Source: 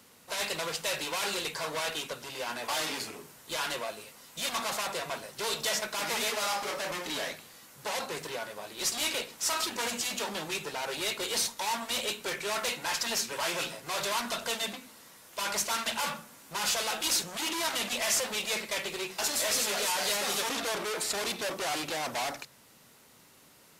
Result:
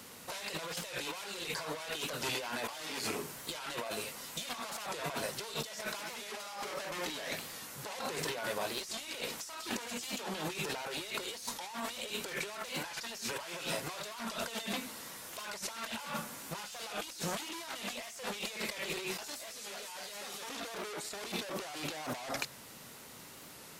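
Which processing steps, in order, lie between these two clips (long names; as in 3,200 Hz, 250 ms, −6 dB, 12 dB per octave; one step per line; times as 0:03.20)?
compressor whose output falls as the input rises −41 dBFS, ratio −1
wow of a warped record 45 rpm, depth 100 cents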